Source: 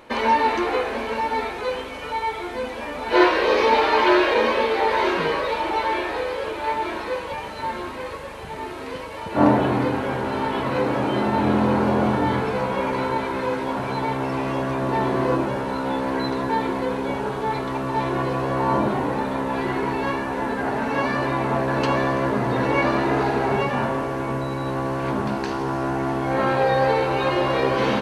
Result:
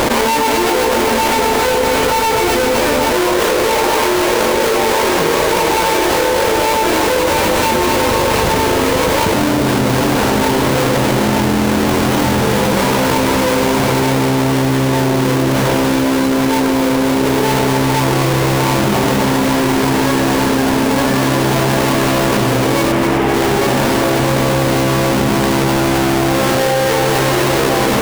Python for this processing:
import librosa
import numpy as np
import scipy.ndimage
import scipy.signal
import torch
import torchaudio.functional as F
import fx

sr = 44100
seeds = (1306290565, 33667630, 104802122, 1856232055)

y = fx.halfwave_hold(x, sr)
y = fx.savgol(y, sr, points=25, at=(22.92, 23.34))
y = fx.echo_alternate(y, sr, ms=128, hz=860.0, feedback_pct=82, wet_db=-5.5)
y = fx.env_flatten(y, sr, amount_pct=100)
y = F.gain(torch.from_numpy(y), -6.0).numpy()